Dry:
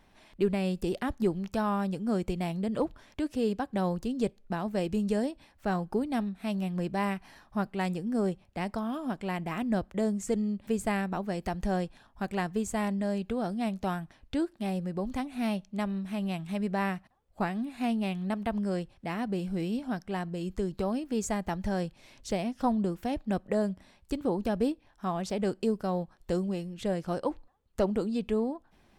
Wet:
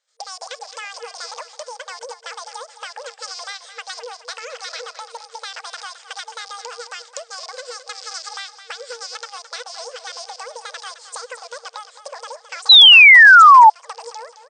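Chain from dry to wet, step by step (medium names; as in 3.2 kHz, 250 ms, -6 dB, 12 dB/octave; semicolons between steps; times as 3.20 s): rattle on loud lows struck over -38 dBFS, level -35 dBFS; speed mistake 7.5 ips tape played at 15 ips; in parallel at +1 dB: peak limiter -24.5 dBFS, peak gain reduction 8.5 dB; on the sum: gate -46 dBFS, range -23 dB; FFT band-pass 460–9100 Hz; compression 5:1, threshold -31 dBFS, peak gain reduction 11 dB; peaking EQ 6.6 kHz +12 dB 2.1 oct; band-stop 720 Hz, Q 12; feedback delay 215 ms, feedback 43%, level -12 dB; painted sound fall, 12.69–13.70 s, 840–4100 Hz -4 dBFS; trim -1.5 dB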